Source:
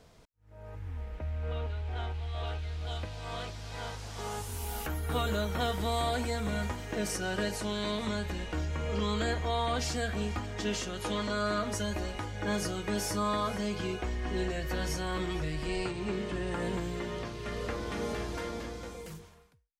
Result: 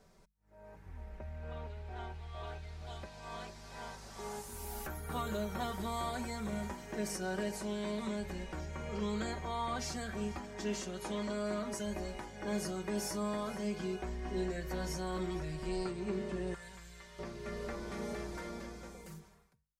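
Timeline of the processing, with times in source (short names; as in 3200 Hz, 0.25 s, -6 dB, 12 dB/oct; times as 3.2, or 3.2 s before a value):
16.54–17.19 passive tone stack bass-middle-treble 10-0-10
whole clip: bell 3100 Hz -7 dB 0.74 oct; notches 50/100/150/200 Hz; comb 5.2 ms, depth 65%; gain -6 dB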